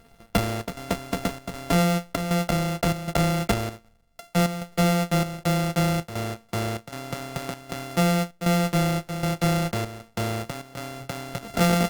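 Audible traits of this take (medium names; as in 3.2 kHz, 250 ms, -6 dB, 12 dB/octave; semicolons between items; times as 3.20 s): a buzz of ramps at a fixed pitch in blocks of 64 samples; chopped level 1.3 Hz, depth 65%, duty 80%; Opus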